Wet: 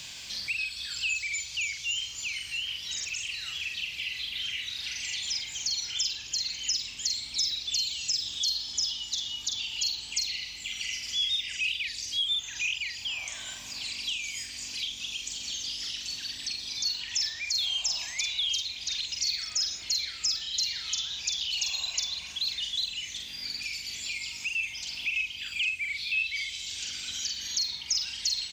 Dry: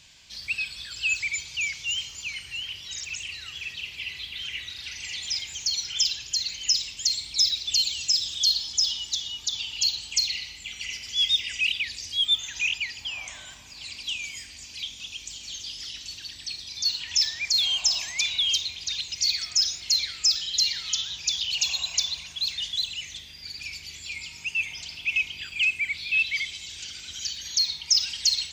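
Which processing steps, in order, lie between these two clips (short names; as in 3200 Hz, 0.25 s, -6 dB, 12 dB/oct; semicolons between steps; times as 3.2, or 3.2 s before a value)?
bit-crush 12-bit; doubler 44 ms -4 dB; three-band squash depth 70%; gain -5.5 dB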